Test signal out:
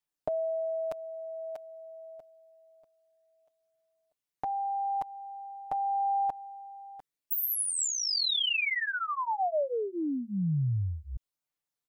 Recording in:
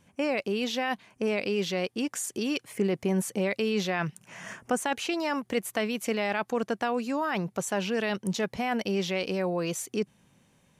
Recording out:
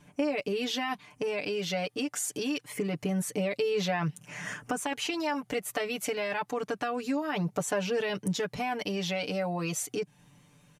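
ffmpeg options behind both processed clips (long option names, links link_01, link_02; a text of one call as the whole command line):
ffmpeg -i in.wav -af "aecho=1:1:6.8:0.99,acompressor=threshold=-29dB:ratio=3,aphaser=in_gain=1:out_gain=1:delay=1.6:decay=0.24:speed=0.26:type=triangular" out.wav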